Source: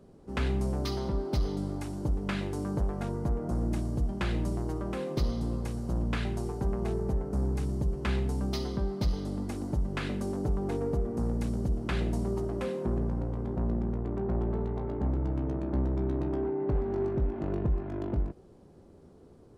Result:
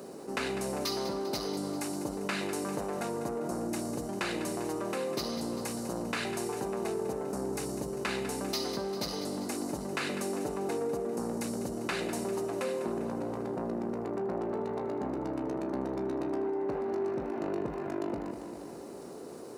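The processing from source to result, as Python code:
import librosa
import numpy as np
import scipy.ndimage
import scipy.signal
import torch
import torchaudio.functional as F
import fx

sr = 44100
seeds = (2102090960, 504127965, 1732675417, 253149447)

y = scipy.signal.sosfilt(scipy.signal.butter(2, 320.0, 'highpass', fs=sr, output='sos'), x)
y = fx.high_shelf(y, sr, hz=5100.0, db=10.0)
y = fx.notch(y, sr, hz=3300.0, q=7.9)
y = fx.echo_feedback(y, sr, ms=198, feedback_pct=57, wet_db=-14)
y = fx.env_flatten(y, sr, amount_pct=50)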